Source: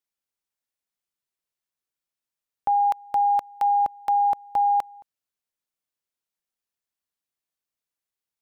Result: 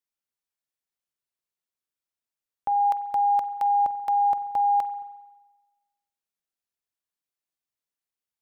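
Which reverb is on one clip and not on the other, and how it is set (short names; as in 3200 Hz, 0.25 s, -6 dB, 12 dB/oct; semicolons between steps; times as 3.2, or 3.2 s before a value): spring tank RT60 1.2 s, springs 44 ms, chirp 25 ms, DRR 13 dB; gain -3.5 dB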